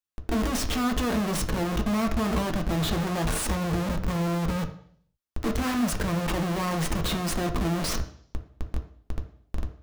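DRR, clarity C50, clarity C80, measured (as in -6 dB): 4.0 dB, 11.0 dB, 14.5 dB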